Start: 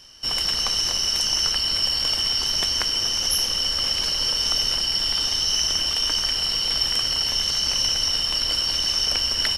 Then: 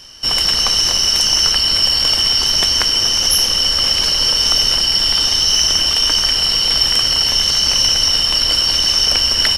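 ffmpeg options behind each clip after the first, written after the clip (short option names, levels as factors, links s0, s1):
-af "acontrast=54,volume=1.33"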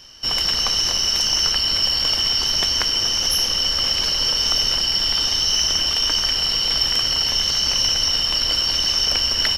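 -af "equalizer=f=9300:w=3.4:g=-14,volume=0.596"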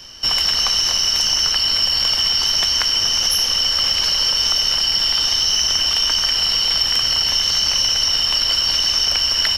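-filter_complex "[0:a]acrossover=split=250|610[s0][s1][s2];[s0]acompressor=threshold=0.01:ratio=4[s3];[s1]acompressor=threshold=0.00224:ratio=4[s4];[s2]acompressor=threshold=0.1:ratio=4[s5];[s3][s4][s5]amix=inputs=3:normalize=0,volume=1.88"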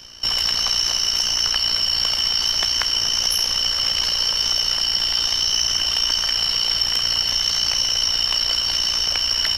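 -af "tremolo=f=59:d=0.621"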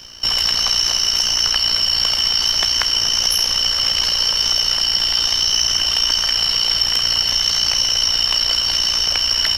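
-af "acrusher=bits=10:mix=0:aa=0.000001,volume=1.41"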